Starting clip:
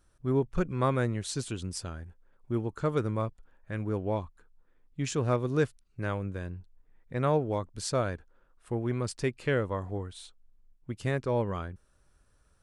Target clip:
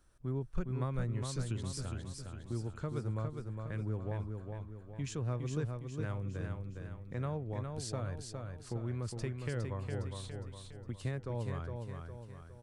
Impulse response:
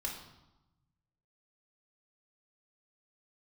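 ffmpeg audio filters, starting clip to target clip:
-filter_complex "[0:a]acrossover=split=130[a][b];[b]acompressor=threshold=-43dB:ratio=2.5[c];[a][c]amix=inputs=2:normalize=0,aecho=1:1:410|820|1230|1640|2050|2460:0.562|0.264|0.124|0.0584|0.0274|0.0129,volume=-1.5dB"

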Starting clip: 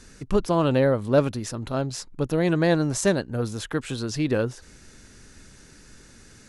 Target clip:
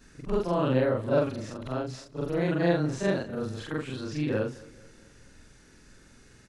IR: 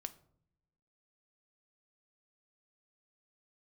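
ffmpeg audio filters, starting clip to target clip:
-filter_complex "[0:a]afftfilt=real='re':imag='-im':win_size=4096:overlap=0.75,acrossover=split=5900[a][b];[b]acompressor=threshold=-52dB:ratio=4:attack=1:release=60[c];[a][c]amix=inputs=2:normalize=0,bass=f=250:g=-1,treble=f=4k:g=-5,asplit=2[d][e];[e]aecho=0:1:217|434|651|868:0.0841|0.0429|0.0219|0.0112[f];[d][f]amix=inputs=2:normalize=0"

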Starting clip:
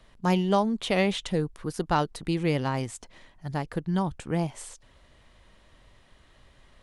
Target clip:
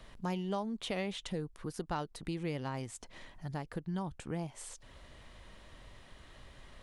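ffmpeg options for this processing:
-af "acompressor=threshold=-49dB:ratio=2,volume=3dB"

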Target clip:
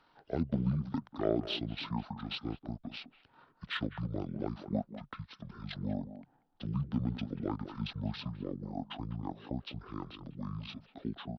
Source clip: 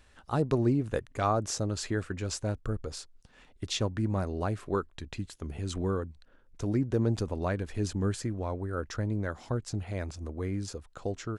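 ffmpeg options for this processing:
-filter_complex "[0:a]acrossover=split=180 7300:gain=0.112 1 0.1[a][b][c];[a][b][c]amix=inputs=3:normalize=0,acrossover=split=660[d][e];[e]aexciter=amount=1.2:drive=6.3:freq=2.1k[f];[d][f]amix=inputs=2:normalize=0,asplit=2[g][h];[h]adelay=200,highpass=300,lowpass=3.4k,asoftclip=type=hard:threshold=-22dB,volume=-11dB[i];[g][i]amix=inputs=2:normalize=0,asetrate=23361,aresample=44100,atempo=1.88775,aeval=exprs='0.211*(cos(1*acos(clip(val(0)/0.211,-1,1)))-cos(1*PI/2))+0.0133*(cos(3*acos(clip(val(0)/0.211,-1,1)))-cos(3*PI/2))':c=same,volume=-1.5dB"

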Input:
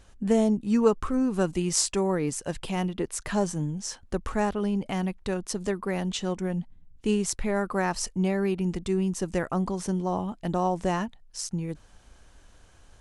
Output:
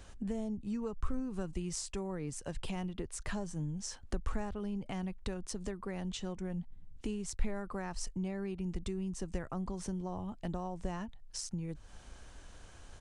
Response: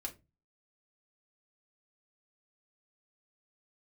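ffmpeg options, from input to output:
-filter_complex "[0:a]acrossover=split=100[a][b];[b]acompressor=threshold=-42dB:ratio=5[c];[a][c]amix=inputs=2:normalize=0,aresample=22050,aresample=44100,volume=2dB"

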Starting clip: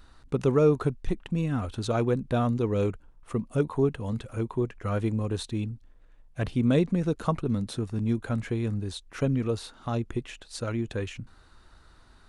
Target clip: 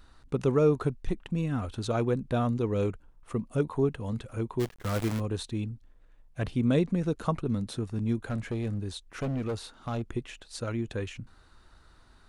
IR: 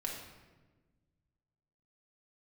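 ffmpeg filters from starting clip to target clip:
-filter_complex "[0:a]asplit=3[a][b][c];[a]afade=t=out:st=4.59:d=0.02[d];[b]acrusher=bits=6:dc=4:mix=0:aa=0.000001,afade=t=in:st=4.59:d=0.02,afade=t=out:st=5.19:d=0.02[e];[c]afade=t=in:st=5.19:d=0.02[f];[d][e][f]amix=inputs=3:normalize=0,asettb=1/sr,asplit=3[g][h][i];[g]atrim=end=8.254[j];[h]atrim=start=8.25:end=10.09,asetpts=PTS-STARTPTS,afade=t=in:d=0.004:c=qsin,afade=t=out:st=1.836:d=0.004:c=qsin,asoftclip=type=hard:threshold=-25dB[k];[i]atrim=start=10.086[l];[j][k]acrossfade=d=0.004:c1=hsin:c2=qsin[m];[m][l]acrossfade=d=0.004:c1=qsin:c2=hsin,volume=-2dB"

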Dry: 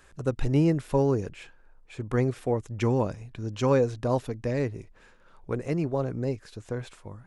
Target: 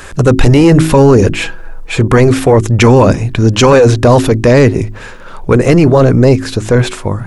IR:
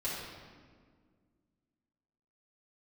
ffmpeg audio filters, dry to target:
-filter_complex "[0:a]asettb=1/sr,asplit=3[a][b][c];[a]atrim=end=1.324[d];[b]atrim=start=1.32:end=2,asetpts=PTS-STARTPTS,afade=t=in:d=0.004:c=qsin,afade=t=out:st=0.676:d=0.004:c=qsin,aecho=1:1:6.1:0.7,atrim=end_sample=29988[e];[c]atrim=start=1.996[f];[d][e]acrossfade=d=0.004:c1=hsin:c2=qsin[g];[g][f]acrossfade=d=0.004:c1=qsin:c2=hsin,bandreject=f=53.06:t=h:w=4,bandreject=f=106.12:t=h:w=4,bandreject=f=159.18:t=h:w=4,bandreject=f=212.24:t=h:w=4,bandreject=f=265.3:t=h:w=4,bandreject=f=318.36:t=h:w=4,bandreject=f=371.42:t=h:w=4,apsyclip=28.5dB,volume=-1.5dB"

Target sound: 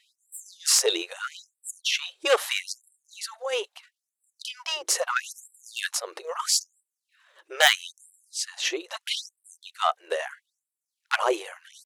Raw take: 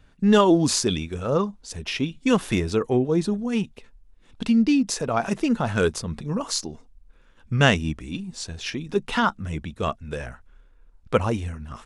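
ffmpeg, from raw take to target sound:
-af "asetrate=48091,aresample=44100,atempo=0.917004,aeval=exprs='0.794*(cos(1*acos(clip(val(0)/0.794,-1,1)))-cos(1*PI/2))+0.158*(cos(5*acos(clip(val(0)/0.794,-1,1)))-cos(5*PI/2))+0.282*(cos(6*acos(clip(val(0)/0.794,-1,1)))-cos(6*PI/2))+0.00562*(cos(7*acos(clip(val(0)/0.794,-1,1)))-cos(7*PI/2))+0.2*(cos(8*acos(clip(val(0)/0.794,-1,1)))-cos(8*PI/2))':c=same,afftfilt=real='re*gte(b*sr/1024,330*pow(7600/330,0.5+0.5*sin(2*PI*0.77*pts/sr)))':imag='im*gte(b*sr/1024,330*pow(7600/330,0.5+0.5*sin(2*PI*0.77*pts/sr)))':win_size=1024:overlap=0.75,volume=-1dB"

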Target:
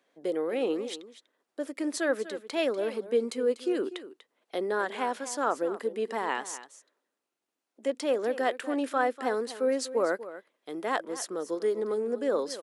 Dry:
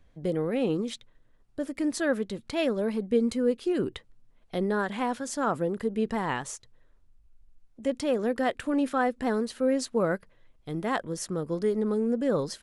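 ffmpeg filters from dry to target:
-filter_complex "[0:a]highpass=f=310:w=0.5412,highpass=f=310:w=1.3066,asplit=2[a][b];[b]aecho=0:1:244:0.188[c];[a][c]amix=inputs=2:normalize=0"

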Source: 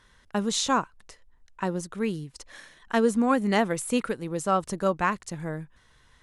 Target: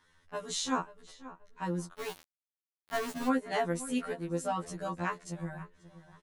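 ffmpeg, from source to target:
-filter_complex "[0:a]asplit=2[a][b];[b]adelay=532,lowpass=f=2.7k:p=1,volume=-16dB,asplit=2[c][d];[d]adelay=532,lowpass=f=2.7k:p=1,volume=0.31,asplit=2[e][f];[f]adelay=532,lowpass=f=2.7k:p=1,volume=0.31[g];[a][c][e][g]amix=inputs=4:normalize=0,asplit=3[h][i][j];[h]afade=t=out:st=1.92:d=0.02[k];[i]aeval=exprs='val(0)*gte(abs(val(0)),0.0531)':c=same,afade=t=in:st=1.92:d=0.02,afade=t=out:st=3.27:d=0.02[l];[j]afade=t=in:st=3.27:d=0.02[m];[k][l][m]amix=inputs=3:normalize=0,afftfilt=real='re*2*eq(mod(b,4),0)':imag='im*2*eq(mod(b,4),0)':win_size=2048:overlap=0.75,volume=-5dB"

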